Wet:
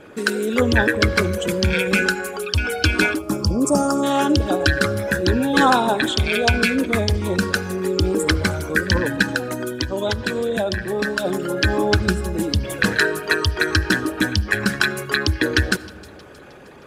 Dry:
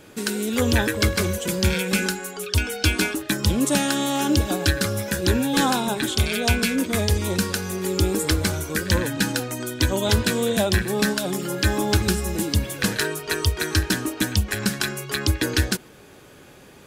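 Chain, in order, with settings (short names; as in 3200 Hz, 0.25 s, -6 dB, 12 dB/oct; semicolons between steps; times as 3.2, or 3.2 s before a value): formant sharpening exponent 1.5; reverb RT60 1.8 s, pre-delay 35 ms, DRR 18.5 dB; 3.19–4.04 spectral gain 1400–4500 Hz -24 dB; 9.22–11.25 compressor, threshold -23 dBFS, peak gain reduction 9.5 dB; bell 1200 Hz +9.5 dB 2.7 oct; thin delay 0.313 s, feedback 52%, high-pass 3200 Hz, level -20 dB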